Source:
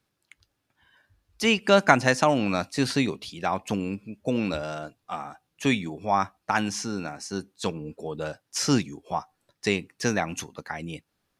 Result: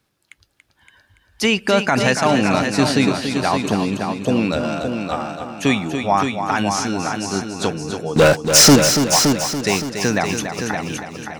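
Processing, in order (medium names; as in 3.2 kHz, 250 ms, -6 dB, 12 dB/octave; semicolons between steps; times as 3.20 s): peak limiter -13 dBFS, peak gain reduction 11.5 dB; 8.16–8.76 s: waveshaping leveller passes 5; multi-head delay 284 ms, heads first and second, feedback 42%, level -8 dB; trim +7.5 dB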